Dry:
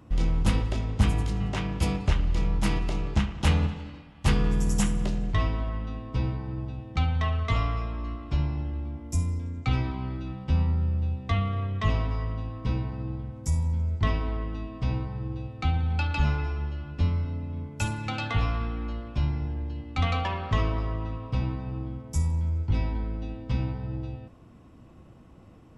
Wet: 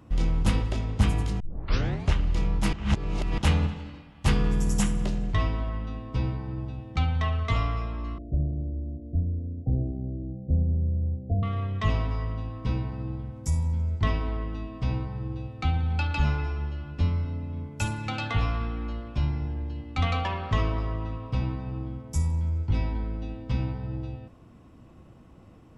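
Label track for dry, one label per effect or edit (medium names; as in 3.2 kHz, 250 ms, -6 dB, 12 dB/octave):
1.400000	1.400000	tape start 0.69 s
2.730000	3.380000	reverse
8.180000	11.430000	steep low-pass 700 Hz 96 dB/octave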